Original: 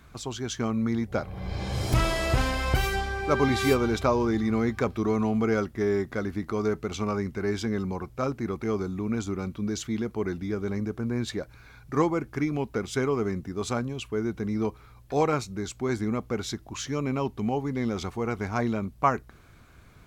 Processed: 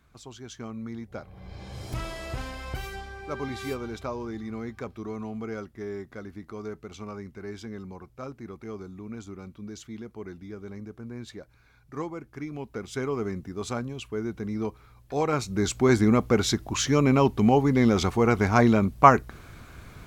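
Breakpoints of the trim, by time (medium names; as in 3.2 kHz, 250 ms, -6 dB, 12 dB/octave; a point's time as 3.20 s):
12.28 s -10 dB
13.19 s -2.5 dB
15.23 s -2.5 dB
15.64 s +8 dB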